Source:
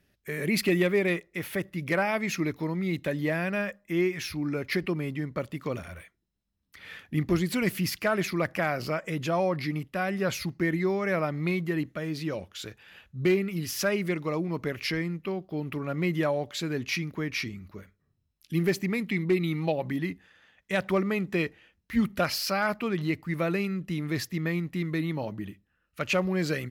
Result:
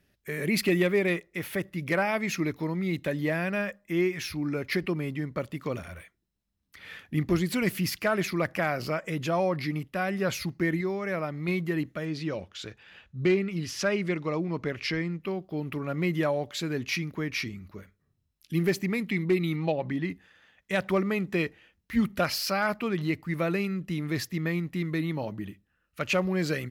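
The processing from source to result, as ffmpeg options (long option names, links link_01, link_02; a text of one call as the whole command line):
ffmpeg -i in.wav -filter_complex "[0:a]asettb=1/sr,asplit=3[link_01][link_02][link_03];[link_01]atrim=end=12.054[link_04];[link_02]atrim=start=12.05:end=15.21,asetpts=PTS-STARTPTS,afade=type=in:duration=0.004:curve=qsin,afade=type=out:start_time=3.156:duration=0.004:curve=qsin,lowpass=6600[link_05];[link_03]atrim=start=15.206[link_06];[link_04][link_05]acrossfade=duration=0.004:curve1=hsin:curve2=qsin[link_07];[link_07][link_06]acrossfade=duration=0.004:curve1=qsin:curve2=hsin,asettb=1/sr,asplit=3[link_08][link_09][link_10];[link_08]atrim=end=19.564[link_11];[link_09]atrim=start=19.56:end=20.1,asetpts=PTS-STARTPTS,afade=type=in:duration=0.004:curve=qsin,afade=type=out:start_time=0.536:duration=0.004:curve=qsin,adynamicsmooth=sensitivity=2:basefreq=6500[link_12];[link_10]atrim=start=20.096[link_13];[link_11][link_12]acrossfade=duration=0.004:curve1=hsin:curve2=qsin[link_14];[link_14][link_13]acrossfade=duration=0.004:curve1=qsin:curve2=hsin,asplit=3[link_15][link_16][link_17];[link_15]atrim=end=10.812[link_18];[link_16]atrim=start=10.808:end=11.482,asetpts=PTS-STARTPTS,volume=-3.5dB[link_19];[link_17]atrim=start=11.478[link_20];[link_18][link_19]acrossfade=duration=0.004:curve1=hsin:curve2=hsin[link_21];[link_21][link_20]acrossfade=duration=0.004:curve1=hsin:curve2=hsin" out.wav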